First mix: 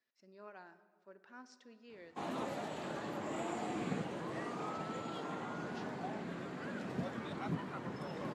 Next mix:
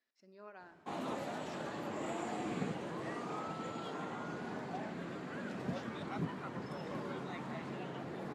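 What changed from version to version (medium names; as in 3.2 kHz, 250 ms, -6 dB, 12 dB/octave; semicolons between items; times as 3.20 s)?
background: entry -1.30 s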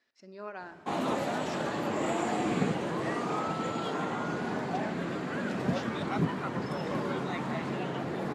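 speech +11.5 dB; background +9.5 dB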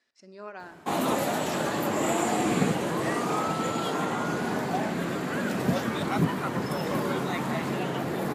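background +4.0 dB; master: remove distance through air 75 m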